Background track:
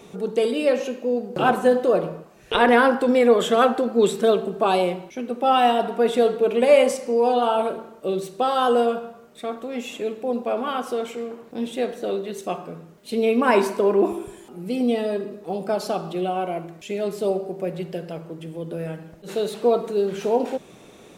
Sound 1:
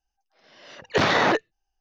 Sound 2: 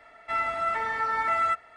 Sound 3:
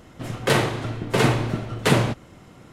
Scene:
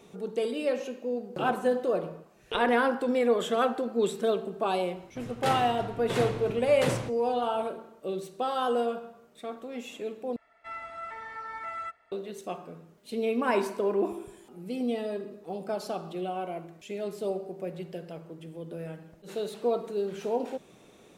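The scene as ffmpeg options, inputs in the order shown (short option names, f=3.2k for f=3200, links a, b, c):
-filter_complex "[0:a]volume=-8.5dB,asplit=2[a][b];[a]atrim=end=10.364[c];[2:a]atrim=end=1.76,asetpts=PTS-STARTPTS,volume=-12dB[d];[b]atrim=start=12.116[e];[3:a]atrim=end=2.72,asetpts=PTS-STARTPTS,volume=-12dB,afade=t=in:d=0.004:c=hsin,afade=t=out:st=2.716:d=0.004:c=hsin,adelay=4960[f];[c][d]acrossfade=d=0.004:c1=hsin:c2=hsin[g];[g][e]acrossfade=d=0.004:c1=hsin:c2=hsin[h];[h][f]amix=inputs=2:normalize=0"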